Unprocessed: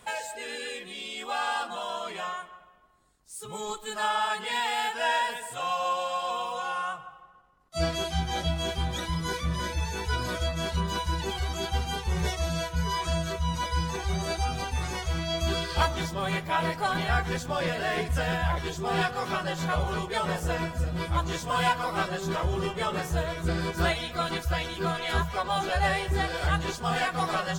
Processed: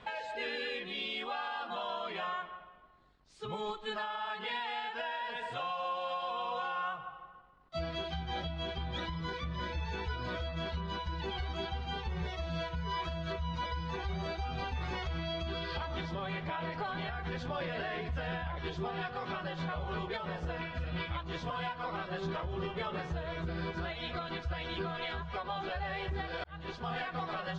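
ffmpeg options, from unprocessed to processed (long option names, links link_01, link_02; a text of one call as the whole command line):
ffmpeg -i in.wav -filter_complex "[0:a]asettb=1/sr,asplit=3[link_01][link_02][link_03];[link_01]atrim=end=14.684[link_04];[link_02]atrim=start=14.68:end=18.47,asetpts=PTS-STARTPTS,afade=type=in:duration=0.004:curve=qsin,afade=type=out:start_time=3.786:duration=0.004:curve=qsin,acompressor=threshold=-31dB:ratio=2.5:attack=3.2:release=140:knee=1:detection=peak[link_05];[link_03]atrim=start=18.466[link_06];[link_04][link_05]acrossfade=duration=0.004:curve1=hsin:curve2=qsin[link_07];[link_07][link_06]acrossfade=duration=0.004:curve1=qsin:curve2=hsin,asettb=1/sr,asplit=3[link_08][link_09][link_10];[link_08]atrim=end=20.614[link_11];[link_09]atrim=start=20.61:end=21.23,asetpts=PTS-STARTPTS,afade=type=in:duration=0.004:curve=qsin,afade=type=out:start_time=0.616:duration=0.004:curve=qsin,equalizer=frequency=2600:width=0.81:gain=10.5[link_12];[link_10]atrim=start=21.226[link_13];[link_11][link_12]acrossfade=duration=0.004:curve1=hsin:curve2=qsin[link_14];[link_14][link_13]acrossfade=duration=0.004:curve1=qsin:curve2=hsin,asplit=2[link_15][link_16];[link_15]atrim=end=26.44,asetpts=PTS-STARTPTS,afade=type=out:start_time=26.436:duration=0.004:curve=hsin[link_17];[link_16]atrim=start=26.44,asetpts=PTS-STARTPTS,afade=type=in:duration=0.77[link_18];[link_17][link_18]concat=n=2:v=0:a=1,lowpass=frequency=4100:width=0.5412,lowpass=frequency=4100:width=1.3066,acompressor=threshold=-31dB:ratio=6,alimiter=level_in=5dB:limit=-24dB:level=0:latency=1:release=324,volume=-5dB,volume=1.5dB" out.wav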